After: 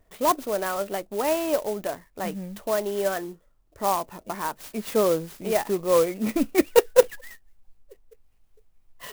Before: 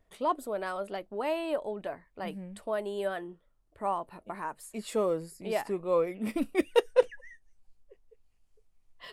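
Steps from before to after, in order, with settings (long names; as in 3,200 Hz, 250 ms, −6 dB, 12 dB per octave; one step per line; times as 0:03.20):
converter with an unsteady clock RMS 0.053 ms
level +7 dB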